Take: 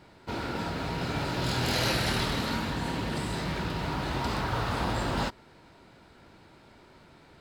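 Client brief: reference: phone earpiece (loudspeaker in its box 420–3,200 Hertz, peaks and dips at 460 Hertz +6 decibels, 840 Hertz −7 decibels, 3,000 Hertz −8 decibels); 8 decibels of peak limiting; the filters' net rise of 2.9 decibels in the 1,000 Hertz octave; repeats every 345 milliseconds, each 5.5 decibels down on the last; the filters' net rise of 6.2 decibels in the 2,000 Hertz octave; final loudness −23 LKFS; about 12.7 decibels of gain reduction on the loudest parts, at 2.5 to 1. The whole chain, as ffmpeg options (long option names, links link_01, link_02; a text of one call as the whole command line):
ffmpeg -i in.wav -af "equalizer=frequency=1000:width_type=o:gain=5,equalizer=frequency=2000:width_type=o:gain=7.5,acompressor=threshold=-41dB:ratio=2.5,alimiter=level_in=9dB:limit=-24dB:level=0:latency=1,volume=-9dB,highpass=420,equalizer=frequency=460:width_type=q:width=4:gain=6,equalizer=frequency=840:width_type=q:width=4:gain=-7,equalizer=frequency=3000:width_type=q:width=4:gain=-8,lowpass=frequency=3200:width=0.5412,lowpass=frequency=3200:width=1.3066,aecho=1:1:345|690|1035|1380|1725|2070|2415:0.531|0.281|0.149|0.079|0.0419|0.0222|0.0118,volume=21dB" out.wav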